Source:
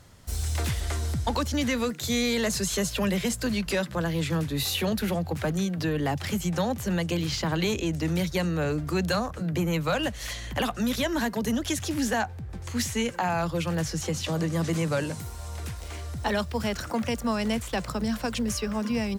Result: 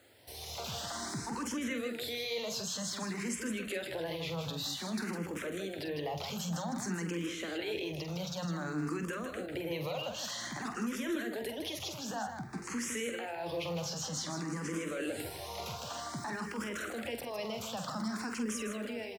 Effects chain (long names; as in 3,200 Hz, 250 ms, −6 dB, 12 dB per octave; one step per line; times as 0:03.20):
high-pass filter 250 Hz 12 dB per octave
high-shelf EQ 8,200 Hz −6.5 dB
brickwall limiter −34 dBFS, peak gain reduction 18.5 dB
automatic gain control gain up to 7 dB
background noise violet −73 dBFS
loudspeakers that aren't time-aligned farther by 16 metres −8 dB, 54 metres −7 dB
frequency shifter mixed with the dry sound +0.53 Hz
level −1 dB